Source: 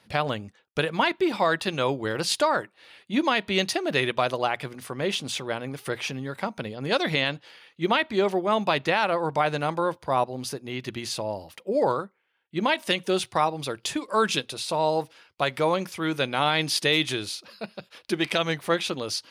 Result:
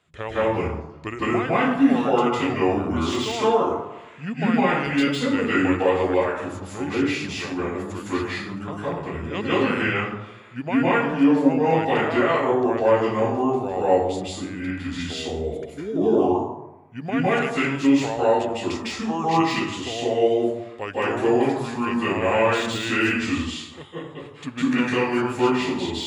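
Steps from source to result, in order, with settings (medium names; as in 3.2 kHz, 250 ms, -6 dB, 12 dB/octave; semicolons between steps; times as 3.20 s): plate-style reverb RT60 0.72 s, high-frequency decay 0.5×, pre-delay 105 ms, DRR -9.5 dB; speed mistake 45 rpm record played at 33 rpm; de-esser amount 50%; trim -7 dB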